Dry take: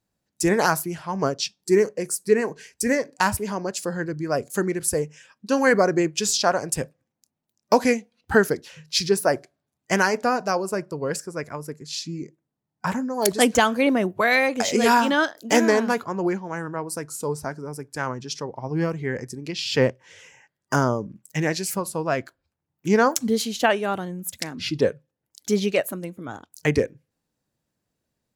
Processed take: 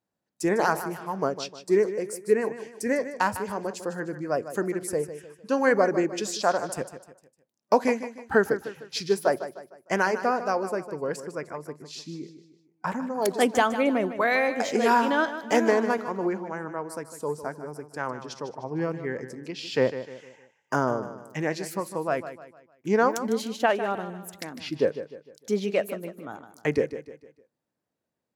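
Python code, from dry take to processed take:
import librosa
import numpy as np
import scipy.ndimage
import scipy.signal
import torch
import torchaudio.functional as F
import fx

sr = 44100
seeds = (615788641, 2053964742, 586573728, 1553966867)

p1 = fx.highpass(x, sr, hz=360.0, slope=6)
p2 = fx.high_shelf(p1, sr, hz=2100.0, db=-11.5)
y = p2 + fx.echo_feedback(p2, sr, ms=152, feedback_pct=40, wet_db=-12.0, dry=0)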